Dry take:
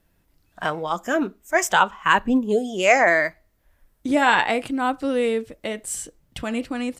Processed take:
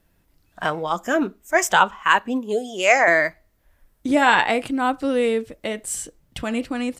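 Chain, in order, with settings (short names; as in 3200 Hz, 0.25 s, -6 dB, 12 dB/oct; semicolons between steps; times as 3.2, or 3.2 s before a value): 2.03–3.08 HPF 490 Hz 6 dB/oct; gain +1.5 dB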